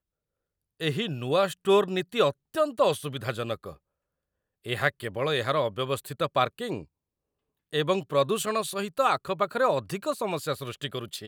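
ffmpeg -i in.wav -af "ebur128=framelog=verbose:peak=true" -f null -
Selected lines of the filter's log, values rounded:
Integrated loudness:
  I:         -27.7 LUFS
  Threshold: -37.9 LUFS
Loudness range:
  LRA:         3.0 LU
  Threshold: -48.5 LUFS
  LRA low:   -29.9 LUFS
  LRA high:  -26.9 LUFS
True peak:
  Peak:       -8.5 dBFS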